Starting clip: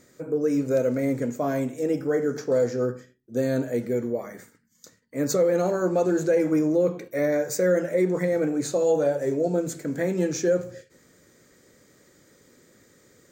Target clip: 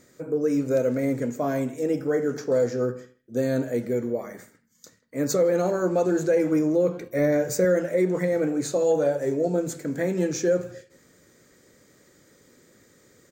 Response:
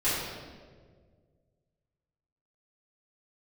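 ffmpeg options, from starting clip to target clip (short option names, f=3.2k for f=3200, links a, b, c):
-filter_complex "[0:a]asettb=1/sr,asplit=3[a][b][c];[a]atrim=end=7.014[d];[b]atrim=start=7.01:end=7.65,asetpts=PTS-STARTPTS,afade=t=in:d=0.004:c=qsin,afade=t=out:st=0.636:d=0.004:c=qsin,lowshelf=f=200:g=10.5[e];[c]atrim=start=7.646[f];[d][e]acrossfade=d=0.004:c1=hsin:c2=qsin[g];[g][f]acrossfade=d=0.004:c1=qsin:c2=hsin,asplit=2[h][i];[i]adelay=160,highpass=300,lowpass=3.4k,asoftclip=type=hard:threshold=-21dB,volume=-20dB[j];[h][j]amix=inputs=2:normalize=0"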